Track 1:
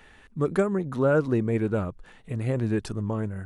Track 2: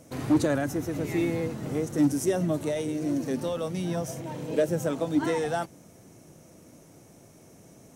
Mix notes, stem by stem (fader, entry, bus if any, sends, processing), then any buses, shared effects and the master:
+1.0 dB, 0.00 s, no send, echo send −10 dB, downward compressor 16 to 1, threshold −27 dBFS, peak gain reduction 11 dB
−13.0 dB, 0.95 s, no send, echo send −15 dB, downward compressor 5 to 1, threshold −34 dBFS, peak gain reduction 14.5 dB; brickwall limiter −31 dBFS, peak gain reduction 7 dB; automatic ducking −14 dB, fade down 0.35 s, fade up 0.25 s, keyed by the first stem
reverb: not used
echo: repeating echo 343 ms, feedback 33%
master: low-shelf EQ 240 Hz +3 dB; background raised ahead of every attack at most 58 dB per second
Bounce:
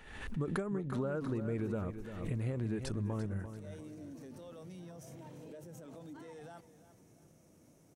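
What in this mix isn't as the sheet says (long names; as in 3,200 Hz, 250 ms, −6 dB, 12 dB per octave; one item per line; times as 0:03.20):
stem 1 +1.0 dB → −6.5 dB
stem 2: missing downward compressor 5 to 1, threshold −34 dBFS, peak gain reduction 14.5 dB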